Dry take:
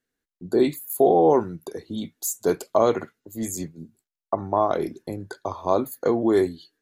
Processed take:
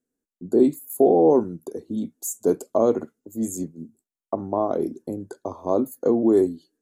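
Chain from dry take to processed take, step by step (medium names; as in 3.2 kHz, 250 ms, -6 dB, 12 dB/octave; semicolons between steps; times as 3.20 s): graphic EQ 250/500/2000/4000/8000 Hz +10/+5/-9/-8/+7 dB; trim -5.5 dB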